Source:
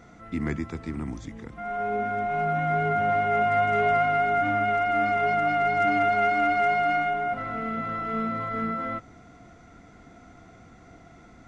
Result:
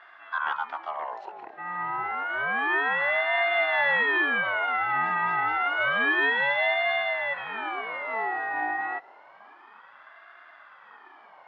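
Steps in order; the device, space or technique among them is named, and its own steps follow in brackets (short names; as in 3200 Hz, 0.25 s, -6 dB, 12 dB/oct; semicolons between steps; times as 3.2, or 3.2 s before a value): voice changer toy (ring modulator with a swept carrier 960 Hz, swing 45%, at 0.29 Hz; speaker cabinet 440–3700 Hz, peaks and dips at 500 Hz -7 dB, 820 Hz +4 dB, 1800 Hz +5 dB, 2700 Hz -6 dB); gain +1.5 dB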